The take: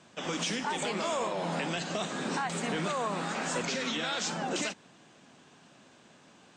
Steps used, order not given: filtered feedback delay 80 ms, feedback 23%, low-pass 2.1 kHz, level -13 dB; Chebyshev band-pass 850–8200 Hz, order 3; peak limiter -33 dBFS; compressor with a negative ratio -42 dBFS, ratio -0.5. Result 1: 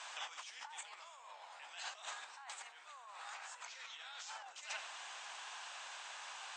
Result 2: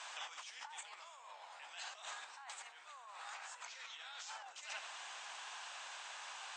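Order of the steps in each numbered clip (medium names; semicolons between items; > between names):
filtered feedback delay > compressor with a negative ratio > Chebyshev band-pass > peak limiter; filtered feedback delay > compressor with a negative ratio > peak limiter > Chebyshev band-pass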